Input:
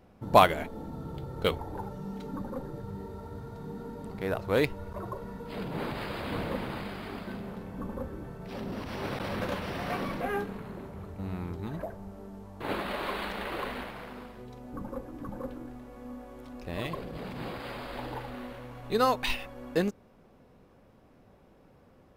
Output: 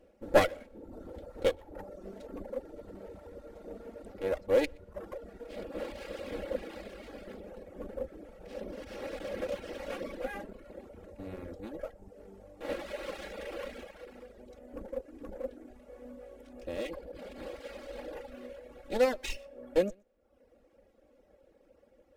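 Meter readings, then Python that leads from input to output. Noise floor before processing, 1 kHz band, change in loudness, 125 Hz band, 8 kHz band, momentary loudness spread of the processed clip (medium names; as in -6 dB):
-59 dBFS, -10.5 dB, -3.5 dB, -12.5 dB, -1.5 dB, 20 LU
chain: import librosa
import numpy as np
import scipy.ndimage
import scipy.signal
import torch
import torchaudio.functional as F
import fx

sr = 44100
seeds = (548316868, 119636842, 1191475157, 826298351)

p1 = fx.lower_of_two(x, sr, delay_ms=3.6)
p2 = fx.graphic_eq(p1, sr, hz=(125, 250, 500, 1000, 4000, 8000), db=(-9, -4, 10, -11, -3, 5))
p3 = p2 + fx.echo_single(p2, sr, ms=122, db=-19.0, dry=0)
p4 = fx.dereverb_blind(p3, sr, rt60_s=0.79)
p5 = fx.high_shelf(p4, sr, hz=5700.0, db=-7.0)
y = p5 * librosa.db_to_amplitude(-2.0)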